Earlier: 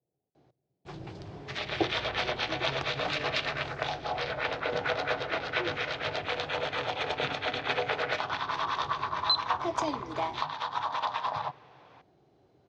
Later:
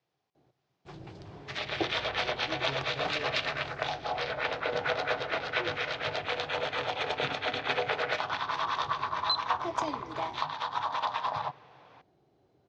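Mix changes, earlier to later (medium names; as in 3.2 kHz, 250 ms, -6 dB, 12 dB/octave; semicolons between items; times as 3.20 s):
speech: remove inverse Chebyshev low-pass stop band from 3.6 kHz, stop band 80 dB; first sound -3.5 dB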